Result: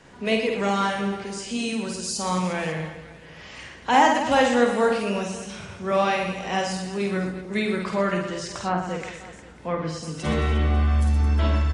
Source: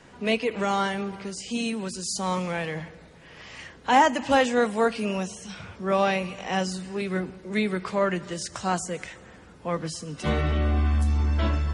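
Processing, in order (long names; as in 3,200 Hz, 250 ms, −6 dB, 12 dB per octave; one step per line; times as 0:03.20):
reverse bouncing-ball delay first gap 50 ms, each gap 1.4×, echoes 5
0:08.28–0:10.03: treble cut that deepens with the level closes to 1,900 Hz, closed at −20 dBFS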